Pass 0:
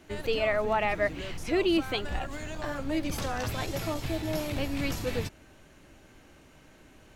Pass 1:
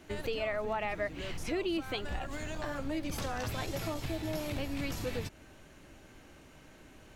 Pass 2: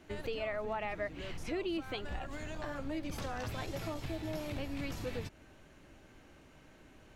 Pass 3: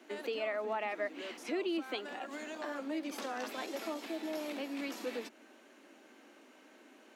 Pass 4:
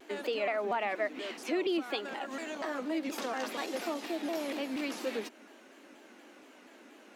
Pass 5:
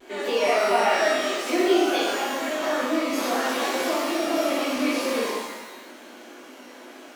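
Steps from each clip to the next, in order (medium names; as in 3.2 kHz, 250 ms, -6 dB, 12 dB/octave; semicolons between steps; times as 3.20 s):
compression 2.5:1, threshold -34 dBFS, peak gain reduction 8.5 dB
treble shelf 5.6 kHz -6 dB; trim -3 dB
steep high-pass 220 Hz 72 dB/octave; trim +1.5 dB
vibrato with a chosen wave saw down 4.2 Hz, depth 160 cents; trim +4 dB
pitch-shifted reverb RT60 1.1 s, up +12 st, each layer -8 dB, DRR -10 dB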